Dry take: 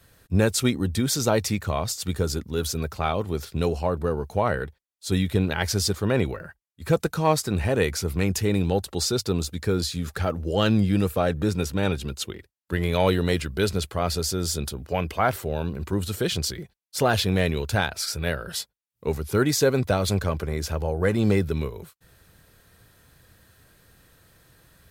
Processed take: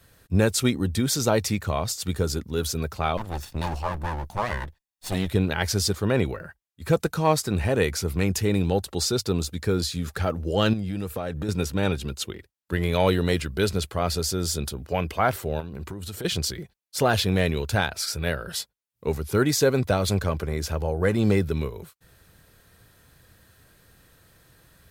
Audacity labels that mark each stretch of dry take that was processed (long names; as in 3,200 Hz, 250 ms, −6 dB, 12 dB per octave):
3.170000	5.290000	lower of the sound and its delayed copy delay 1.1 ms
10.730000	11.490000	downward compressor 4 to 1, threshold −26 dBFS
15.600000	16.250000	downward compressor 16 to 1, threshold −30 dBFS